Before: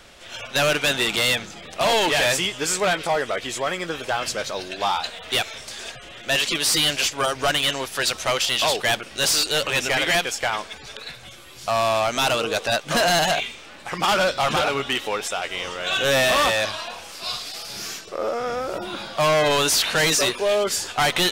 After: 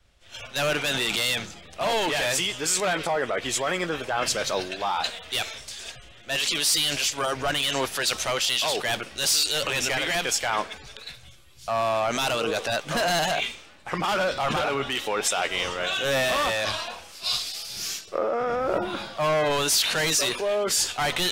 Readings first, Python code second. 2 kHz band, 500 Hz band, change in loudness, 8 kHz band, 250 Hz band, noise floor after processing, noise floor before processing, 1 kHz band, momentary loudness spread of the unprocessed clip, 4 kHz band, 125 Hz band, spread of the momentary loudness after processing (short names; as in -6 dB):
-4.0 dB, -3.5 dB, -3.0 dB, -1.0 dB, -3.0 dB, -48 dBFS, -42 dBFS, -3.5 dB, 13 LU, -3.0 dB, -3.5 dB, 10 LU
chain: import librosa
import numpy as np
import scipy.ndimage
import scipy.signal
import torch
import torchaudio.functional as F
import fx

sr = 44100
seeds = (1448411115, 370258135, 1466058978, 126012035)

p1 = fx.over_compress(x, sr, threshold_db=-28.0, ratio=-1.0)
p2 = x + (p1 * 10.0 ** (2.0 / 20.0))
p3 = fx.band_widen(p2, sr, depth_pct=100)
y = p3 * 10.0 ** (-7.0 / 20.0)